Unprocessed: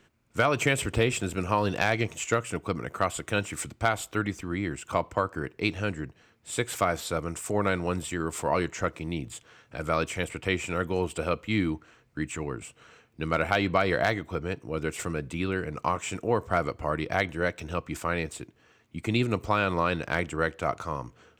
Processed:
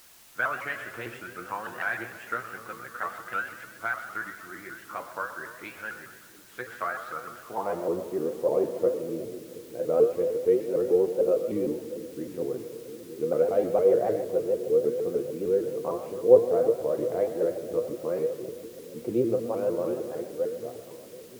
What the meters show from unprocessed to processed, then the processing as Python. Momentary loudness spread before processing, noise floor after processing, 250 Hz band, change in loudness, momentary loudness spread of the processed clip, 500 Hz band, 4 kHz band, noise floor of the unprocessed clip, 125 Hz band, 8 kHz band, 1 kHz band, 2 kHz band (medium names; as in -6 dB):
10 LU, -48 dBFS, -3.0 dB, +1.0 dB, 16 LU, +5.5 dB, under -10 dB, -63 dBFS, -12.5 dB, under -10 dB, -6.0 dB, -4.5 dB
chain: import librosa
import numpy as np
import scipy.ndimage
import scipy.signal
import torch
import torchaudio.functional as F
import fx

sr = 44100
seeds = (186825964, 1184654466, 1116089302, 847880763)

y = fx.fade_out_tail(x, sr, length_s=2.41)
y = fx.peak_eq(y, sr, hz=400.0, db=10.0, octaves=2.6)
y = fx.filter_sweep_bandpass(y, sr, from_hz=1500.0, to_hz=480.0, start_s=7.35, end_s=7.91, q=4.3)
y = scipy.signal.sosfilt(scipy.signal.butter(4, 6900.0, 'lowpass', fs=sr, output='sos'), y)
y = fx.bass_treble(y, sr, bass_db=10, treble_db=2)
y = fx.comb_fb(y, sr, f0_hz=120.0, decay_s=0.27, harmonics='all', damping=0.0, mix_pct=80)
y = fx.echo_split(y, sr, split_hz=430.0, low_ms=720, high_ms=123, feedback_pct=52, wet_db=-12.5)
y = fx.room_shoebox(y, sr, seeds[0], volume_m3=2600.0, walls='mixed', distance_m=0.85)
y = fx.quant_dither(y, sr, seeds[1], bits=10, dither='triangular')
y = fx.vibrato_shape(y, sr, shape='saw_up', rate_hz=6.6, depth_cents=160.0)
y = F.gain(torch.from_numpy(y), 6.5).numpy()